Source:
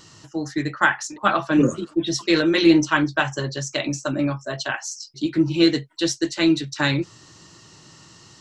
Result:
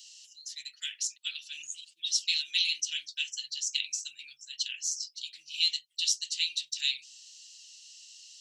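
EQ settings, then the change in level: elliptic high-pass 2800 Hz, stop band 60 dB; 0.0 dB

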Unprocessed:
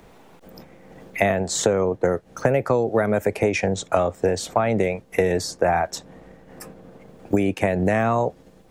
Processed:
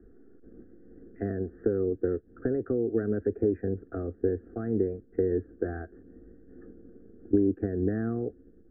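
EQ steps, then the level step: Butterworth band-stop 960 Hz, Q 0.59; steep low-pass 1800 Hz 72 dB/oct; fixed phaser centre 580 Hz, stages 6; 0.0 dB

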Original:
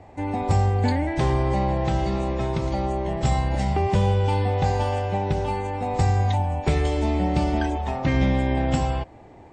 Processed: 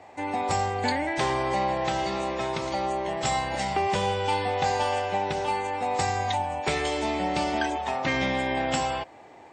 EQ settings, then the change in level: HPF 960 Hz 6 dB/oct; +5.0 dB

